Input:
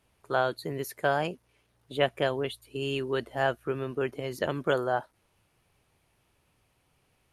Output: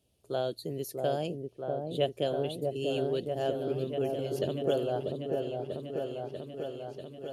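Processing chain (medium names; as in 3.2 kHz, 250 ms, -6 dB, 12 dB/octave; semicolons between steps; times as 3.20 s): high-pass 54 Hz; high-order bell 1.4 kHz -15.5 dB; on a send: delay with an opening low-pass 641 ms, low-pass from 750 Hz, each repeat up 1 oct, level -3 dB; on the sum: trim -2 dB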